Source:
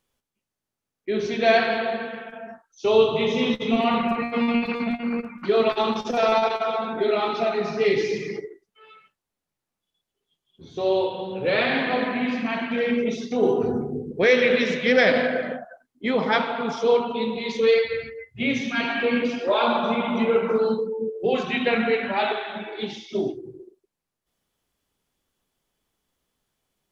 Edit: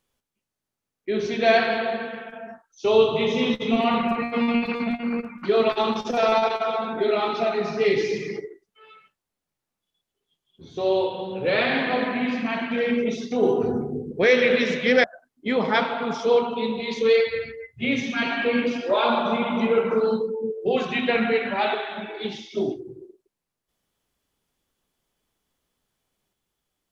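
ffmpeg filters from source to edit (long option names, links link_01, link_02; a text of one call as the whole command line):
ffmpeg -i in.wav -filter_complex "[0:a]asplit=2[link_01][link_02];[link_01]atrim=end=15.042[link_03];[link_02]atrim=start=15.618[link_04];[link_03][link_04]acrossfade=duration=0.004:curve1=hsin:curve2=hsin" out.wav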